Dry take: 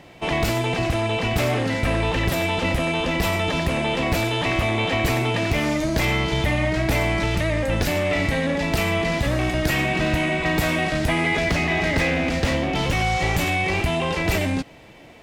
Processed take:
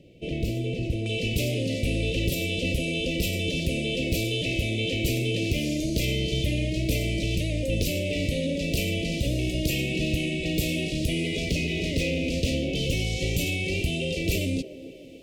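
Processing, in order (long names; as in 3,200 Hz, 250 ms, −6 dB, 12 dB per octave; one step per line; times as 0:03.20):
elliptic band-stop filter 530–2,600 Hz, stop band 50 dB
high-shelf EQ 2,300 Hz −11 dB, from 0:01.06 +2.5 dB
delay with a band-pass on its return 290 ms, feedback 53%, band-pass 590 Hz, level −10 dB
level −3 dB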